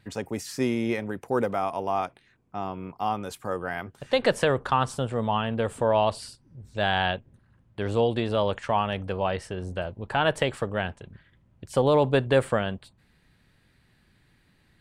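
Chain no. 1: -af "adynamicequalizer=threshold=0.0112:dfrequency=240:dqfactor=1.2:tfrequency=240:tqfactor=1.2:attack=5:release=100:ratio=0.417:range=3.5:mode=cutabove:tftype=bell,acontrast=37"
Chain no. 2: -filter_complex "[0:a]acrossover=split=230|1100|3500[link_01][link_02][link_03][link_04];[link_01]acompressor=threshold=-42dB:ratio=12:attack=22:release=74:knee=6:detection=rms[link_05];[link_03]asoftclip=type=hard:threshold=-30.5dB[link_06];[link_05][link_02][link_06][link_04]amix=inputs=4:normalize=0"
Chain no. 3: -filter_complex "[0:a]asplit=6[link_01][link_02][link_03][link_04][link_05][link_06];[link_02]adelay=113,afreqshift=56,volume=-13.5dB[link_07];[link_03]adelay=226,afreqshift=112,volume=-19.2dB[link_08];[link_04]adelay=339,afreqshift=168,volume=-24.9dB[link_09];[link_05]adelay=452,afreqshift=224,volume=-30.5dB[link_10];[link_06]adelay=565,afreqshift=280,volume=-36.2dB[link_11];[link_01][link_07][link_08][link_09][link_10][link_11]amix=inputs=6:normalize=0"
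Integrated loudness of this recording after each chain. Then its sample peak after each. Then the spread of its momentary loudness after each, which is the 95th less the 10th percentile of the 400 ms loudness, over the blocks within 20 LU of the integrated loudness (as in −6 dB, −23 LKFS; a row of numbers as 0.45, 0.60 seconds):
−22.5, −28.0, −26.5 LKFS; −5.5, −10.5, −8.0 dBFS; 11, 12, 13 LU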